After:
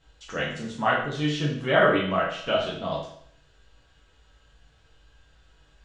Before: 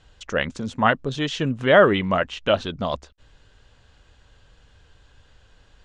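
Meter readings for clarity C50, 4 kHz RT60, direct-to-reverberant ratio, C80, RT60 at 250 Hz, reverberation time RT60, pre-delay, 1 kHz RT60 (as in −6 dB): 4.0 dB, 0.60 s, −6.5 dB, 7.5 dB, 0.60 s, 0.65 s, 6 ms, 0.65 s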